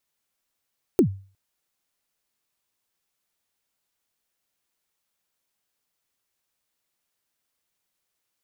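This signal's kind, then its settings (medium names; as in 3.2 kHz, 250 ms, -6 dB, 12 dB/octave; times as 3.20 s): kick drum length 0.36 s, from 420 Hz, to 97 Hz, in 91 ms, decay 0.39 s, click on, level -10 dB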